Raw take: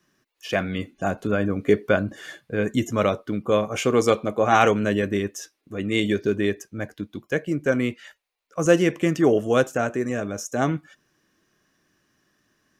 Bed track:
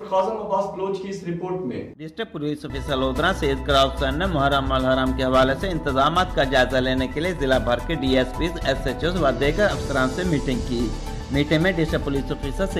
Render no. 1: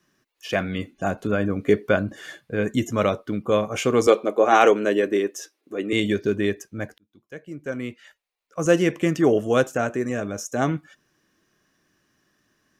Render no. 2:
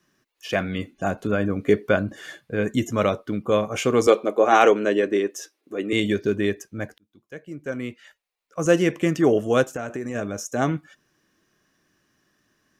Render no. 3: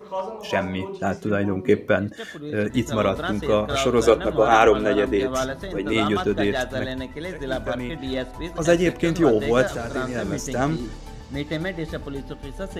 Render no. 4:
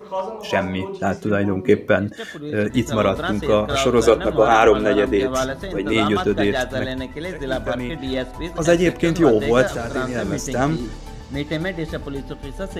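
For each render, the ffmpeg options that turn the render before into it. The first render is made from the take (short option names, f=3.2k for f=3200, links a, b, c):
-filter_complex "[0:a]asettb=1/sr,asplit=3[a][b][c];[a]atrim=end=4.074[d];[b]atrim=start=4.07:end=5.93,asetpts=PTS-STARTPTS,afade=t=in:d=0.004:c=qsin,afade=t=out:st=1.856:d=0.004:c=qsin,highpass=f=350:t=q:w=1.7[e];[c]atrim=start=5.926[f];[d][e]acrossfade=d=0.004:c1=hsin:c2=qsin[g];[g][f]acrossfade=d=0.004:c1=qsin:c2=hsin,asplit=2[h][i];[h]atrim=end=6.98,asetpts=PTS-STARTPTS,afade=t=out:st=6.976:d=0.004:c=hsin[j];[i]atrim=start=6.98,asetpts=PTS-STARTPTS,afade=t=in:d=1.93[k];[j][k]concat=n=2:v=0:a=1"
-filter_complex "[0:a]asettb=1/sr,asplit=3[a][b][c];[a]atrim=end=4.654[d];[b]atrim=start=4.65:end=5.3,asetpts=PTS-STARTPTS,afade=t=in:d=0.004:c=qsin,afade=t=out:st=0.646:d=0.004:c=qsin,lowpass=7.7k[e];[c]atrim=start=5.296[f];[d][e]acrossfade=d=0.004:c1=hsin:c2=qsin[g];[g][f]acrossfade=d=0.004:c1=qsin:c2=hsin,asplit=3[h][i][j];[h]afade=t=out:st=9.64:d=0.02[k];[i]acompressor=threshold=-25dB:ratio=6:attack=3.2:release=140:knee=1:detection=peak,afade=t=in:st=9.64:d=0.02,afade=t=out:st=10.14:d=0.02[l];[j]afade=t=in:st=10.14:d=0.02[m];[k][l][m]amix=inputs=3:normalize=0"
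-filter_complex "[1:a]volume=-8dB[a];[0:a][a]amix=inputs=2:normalize=0"
-af "volume=3dB,alimiter=limit=-2dB:level=0:latency=1"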